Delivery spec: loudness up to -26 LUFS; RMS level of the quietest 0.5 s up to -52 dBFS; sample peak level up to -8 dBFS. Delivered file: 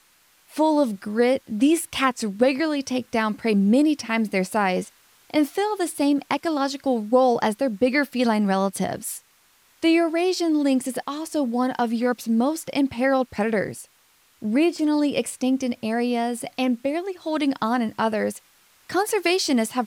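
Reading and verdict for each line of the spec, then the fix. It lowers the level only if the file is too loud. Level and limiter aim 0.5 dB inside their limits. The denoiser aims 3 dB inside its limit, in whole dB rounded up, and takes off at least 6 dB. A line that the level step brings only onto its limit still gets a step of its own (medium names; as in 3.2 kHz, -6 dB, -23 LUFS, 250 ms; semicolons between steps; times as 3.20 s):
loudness -23.0 LUFS: fail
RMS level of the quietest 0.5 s -60 dBFS: pass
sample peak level -5.5 dBFS: fail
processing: trim -3.5 dB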